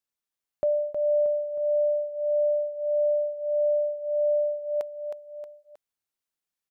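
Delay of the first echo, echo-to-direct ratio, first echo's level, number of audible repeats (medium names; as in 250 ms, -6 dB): 315 ms, -6.0 dB, -7.0 dB, 3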